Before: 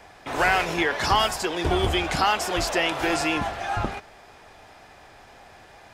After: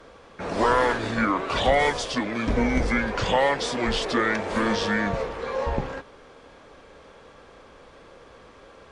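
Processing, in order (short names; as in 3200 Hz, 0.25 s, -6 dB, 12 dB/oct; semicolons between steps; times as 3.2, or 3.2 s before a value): wide varispeed 0.665×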